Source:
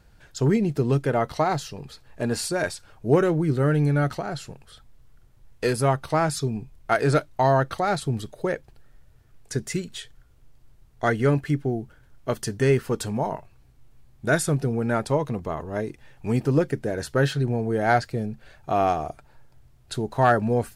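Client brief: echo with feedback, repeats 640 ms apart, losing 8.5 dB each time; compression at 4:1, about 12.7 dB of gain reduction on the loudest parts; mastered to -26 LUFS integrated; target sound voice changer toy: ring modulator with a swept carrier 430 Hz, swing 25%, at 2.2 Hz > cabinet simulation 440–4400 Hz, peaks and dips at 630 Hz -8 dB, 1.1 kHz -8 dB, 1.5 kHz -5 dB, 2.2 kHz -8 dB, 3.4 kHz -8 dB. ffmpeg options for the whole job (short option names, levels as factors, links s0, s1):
-af "acompressor=threshold=0.0316:ratio=4,aecho=1:1:640|1280|1920|2560:0.376|0.143|0.0543|0.0206,aeval=exprs='val(0)*sin(2*PI*430*n/s+430*0.25/2.2*sin(2*PI*2.2*n/s))':c=same,highpass=440,equalizer=f=630:t=q:w=4:g=-8,equalizer=f=1100:t=q:w=4:g=-8,equalizer=f=1500:t=q:w=4:g=-5,equalizer=f=2200:t=q:w=4:g=-8,equalizer=f=3400:t=q:w=4:g=-8,lowpass=f=4400:w=0.5412,lowpass=f=4400:w=1.3066,volume=7.5"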